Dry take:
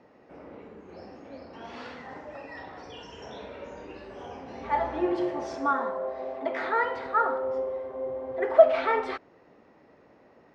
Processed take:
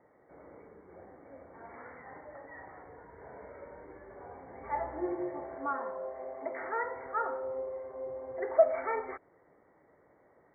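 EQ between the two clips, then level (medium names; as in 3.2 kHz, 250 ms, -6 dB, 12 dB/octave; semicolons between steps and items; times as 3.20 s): peaking EQ 230 Hz -7.5 dB 0.57 oct; dynamic bell 1.5 kHz, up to -3 dB, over -38 dBFS, Q 0.83; brick-wall FIR low-pass 2.3 kHz; -6.0 dB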